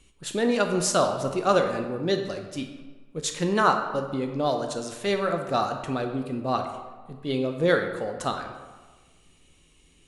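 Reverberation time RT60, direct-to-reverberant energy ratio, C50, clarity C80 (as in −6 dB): 1.4 s, 4.5 dB, 6.5 dB, 8.5 dB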